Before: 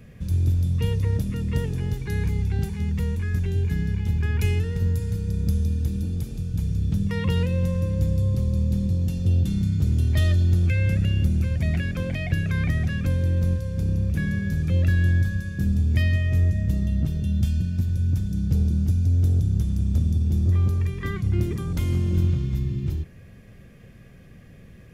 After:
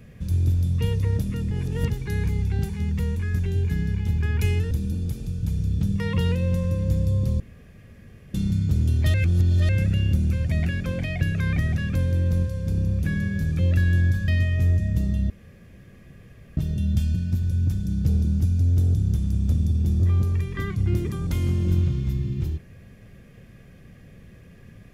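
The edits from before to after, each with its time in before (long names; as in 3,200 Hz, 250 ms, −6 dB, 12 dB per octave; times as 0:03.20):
0:01.51–0:01.90: reverse
0:04.71–0:05.82: remove
0:08.51–0:09.45: fill with room tone
0:10.25–0:10.80: reverse
0:15.39–0:16.01: remove
0:17.03: splice in room tone 1.27 s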